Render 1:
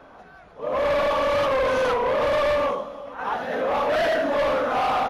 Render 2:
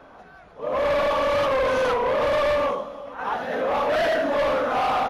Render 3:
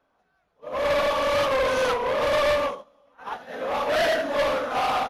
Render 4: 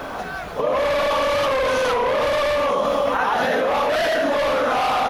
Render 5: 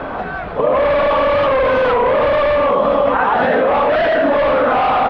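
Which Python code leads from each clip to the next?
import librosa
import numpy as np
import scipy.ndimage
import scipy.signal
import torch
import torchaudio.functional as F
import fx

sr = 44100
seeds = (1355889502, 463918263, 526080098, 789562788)

y1 = x
y2 = fx.high_shelf(y1, sr, hz=3100.0, db=8.5)
y2 = fx.upward_expand(y2, sr, threshold_db=-35.0, expansion=2.5)
y3 = fx.env_flatten(y2, sr, amount_pct=100)
y4 = fx.air_absorb(y3, sr, metres=430.0)
y4 = F.gain(torch.from_numpy(y4), 7.5).numpy()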